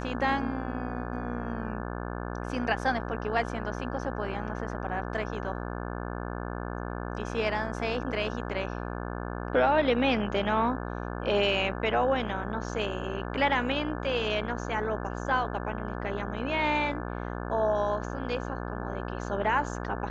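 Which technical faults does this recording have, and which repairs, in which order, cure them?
mains buzz 60 Hz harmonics 29 −35 dBFS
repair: hum removal 60 Hz, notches 29

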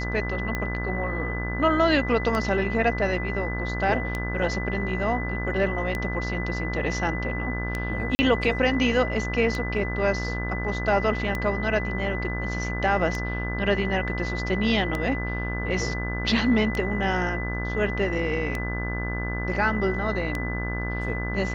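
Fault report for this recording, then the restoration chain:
mains buzz 60 Hz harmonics 33 −30 dBFS
scratch tick 33 1/3 rpm −14 dBFS
whistle 2,000 Hz −32 dBFS
0:08.15–0:08.19: drop-out 40 ms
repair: click removal
notch filter 2,000 Hz, Q 30
hum removal 60 Hz, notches 33
repair the gap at 0:08.15, 40 ms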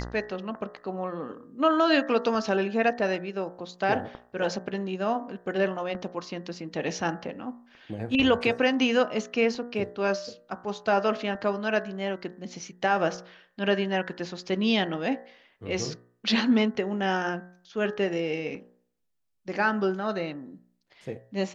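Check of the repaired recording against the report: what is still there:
none of them is left

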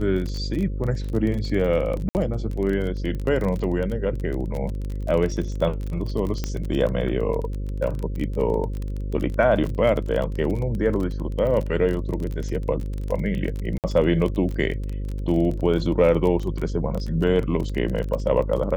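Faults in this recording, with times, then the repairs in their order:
mains buzz 50 Hz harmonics 11 −28 dBFS
surface crackle 25 per second −27 dBFS
0:02.09–0:02.15: drop-out 59 ms
0:06.44: click −12 dBFS
0:13.78–0:13.84: drop-out 58 ms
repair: click removal
hum removal 50 Hz, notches 11
repair the gap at 0:02.09, 59 ms
repair the gap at 0:13.78, 58 ms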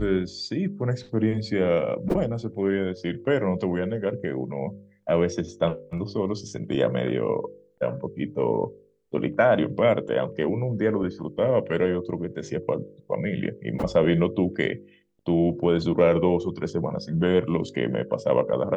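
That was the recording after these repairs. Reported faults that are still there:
none of them is left

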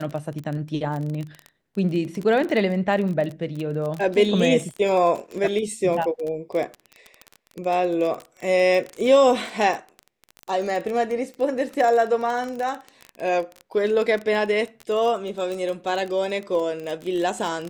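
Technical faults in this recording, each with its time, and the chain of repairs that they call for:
surface crackle 21 per second −26 dBFS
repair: click removal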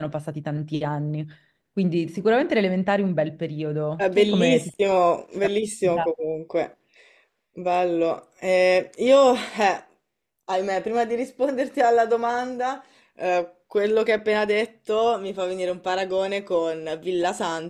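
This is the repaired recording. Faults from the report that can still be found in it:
none of them is left

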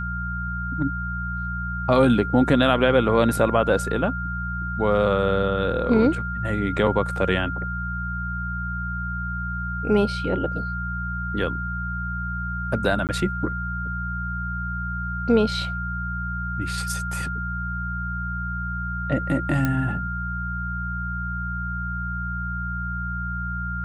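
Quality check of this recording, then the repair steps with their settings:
mains hum 60 Hz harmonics 3 −30 dBFS
whistle 1,400 Hz −29 dBFS
0:13.07–0:13.09: drop-out 18 ms
0:19.65: click −10 dBFS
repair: click removal
hum removal 60 Hz, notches 3
notch filter 1,400 Hz, Q 30
repair the gap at 0:13.07, 18 ms

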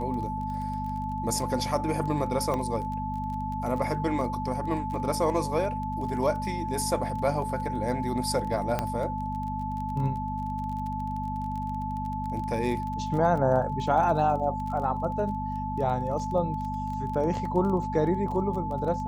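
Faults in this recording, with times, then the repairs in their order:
surface crackle 22 per second −34 dBFS
mains hum 50 Hz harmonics 5 −34 dBFS
whistle 870 Hz −32 dBFS
0:02.54: click −18 dBFS
0:08.79: click −13 dBFS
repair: click removal
hum removal 50 Hz, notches 5
notch filter 870 Hz, Q 30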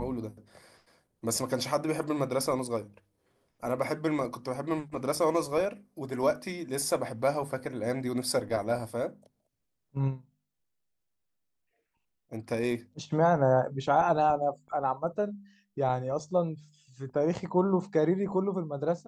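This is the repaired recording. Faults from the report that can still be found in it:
none of them is left

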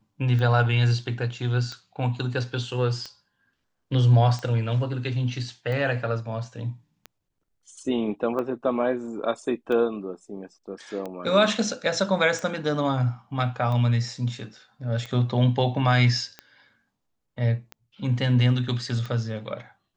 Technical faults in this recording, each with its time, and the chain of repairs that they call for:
scratch tick 45 rpm −21 dBFS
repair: click removal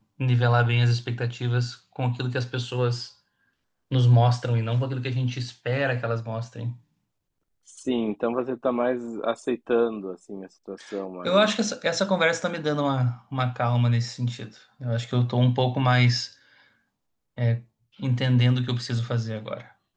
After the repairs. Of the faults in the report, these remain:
none of them is left

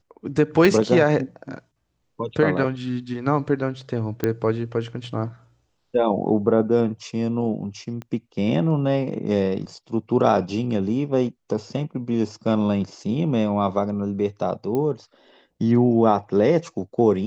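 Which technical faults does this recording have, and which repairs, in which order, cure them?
0:00.65: click −6 dBFS
0:04.24: click −9 dBFS
0:08.02: click −22 dBFS
0:14.75: click −15 dBFS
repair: click removal

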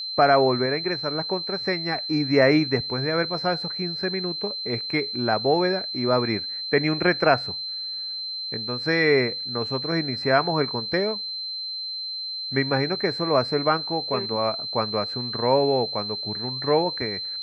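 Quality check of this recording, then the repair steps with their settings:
whistle 4,100 Hz −29 dBFS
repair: notch filter 4,100 Hz, Q 30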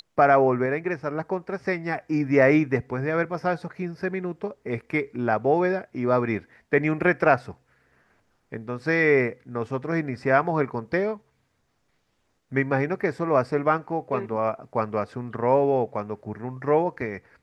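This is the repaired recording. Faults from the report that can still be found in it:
none of them is left

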